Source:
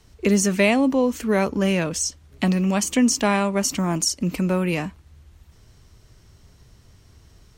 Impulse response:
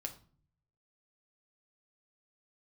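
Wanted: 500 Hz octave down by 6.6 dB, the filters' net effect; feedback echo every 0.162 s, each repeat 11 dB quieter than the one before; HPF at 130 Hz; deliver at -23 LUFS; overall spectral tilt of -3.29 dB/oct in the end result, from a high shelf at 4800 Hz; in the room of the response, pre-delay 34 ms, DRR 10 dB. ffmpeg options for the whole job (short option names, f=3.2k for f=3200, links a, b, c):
-filter_complex "[0:a]highpass=130,equalizer=f=500:t=o:g=-8.5,highshelf=f=4.8k:g=4.5,aecho=1:1:162|324|486:0.282|0.0789|0.0221,asplit=2[a][b];[1:a]atrim=start_sample=2205,adelay=34[c];[b][c]afir=irnorm=-1:irlink=0,volume=-8dB[d];[a][d]amix=inputs=2:normalize=0,volume=-1.5dB"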